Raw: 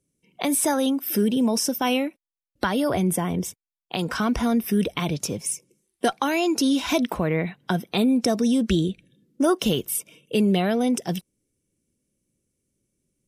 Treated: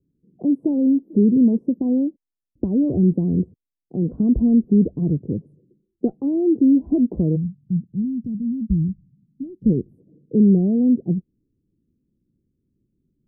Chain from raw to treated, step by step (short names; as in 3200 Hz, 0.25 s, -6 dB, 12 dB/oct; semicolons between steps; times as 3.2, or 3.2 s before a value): inverse Chebyshev low-pass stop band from 1700 Hz, stop band 70 dB, from 7.35 s stop band from 830 Hz, from 9.64 s stop band from 1600 Hz; gain +7 dB